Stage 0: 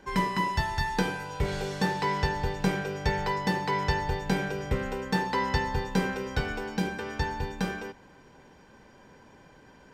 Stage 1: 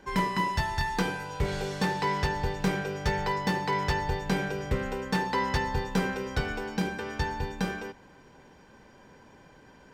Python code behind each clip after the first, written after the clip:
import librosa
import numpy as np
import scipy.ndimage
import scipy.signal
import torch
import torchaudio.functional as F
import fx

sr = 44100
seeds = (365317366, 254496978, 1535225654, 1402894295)

y = 10.0 ** (-18.0 / 20.0) * (np.abs((x / 10.0 ** (-18.0 / 20.0) + 3.0) % 4.0 - 2.0) - 1.0)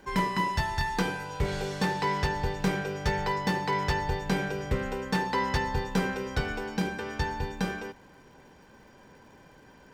y = fx.dmg_crackle(x, sr, seeds[0], per_s=260.0, level_db=-56.0)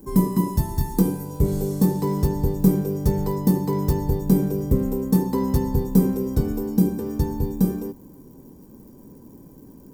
y = fx.curve_eq(x, sr, hz=(100.0, 290.0, 730.0, 1100.0, 1500.0, 2900.0, 5300.0, 14000.0), db=(0, 6, -14, -12, -25, -24, -12, 14))
y = y * librosa.db_to_amplitude(8.5)